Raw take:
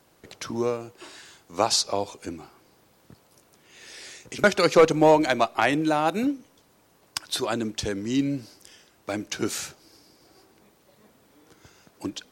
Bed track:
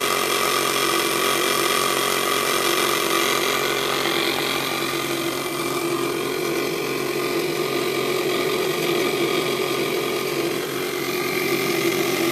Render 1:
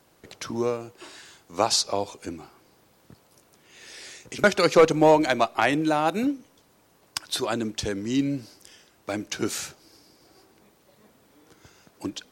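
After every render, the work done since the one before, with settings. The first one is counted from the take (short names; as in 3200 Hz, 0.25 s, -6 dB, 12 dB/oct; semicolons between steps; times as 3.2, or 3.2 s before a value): nothing audible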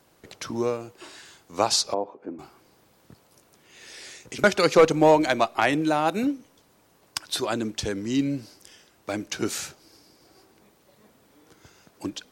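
1.94–2.39 Butterworth band-pass 480 Hz, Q 0.57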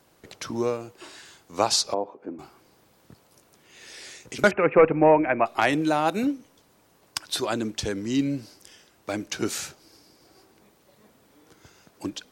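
4.51–5.46 Chebyshev low-pass 2600 Hz, order 6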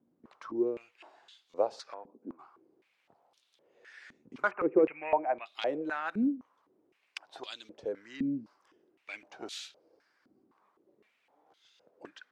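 stepped band-pass 3.9 Hz 240–3500 Hz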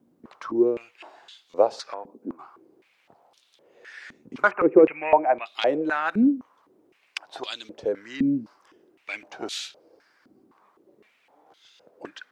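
gain +9.5 dB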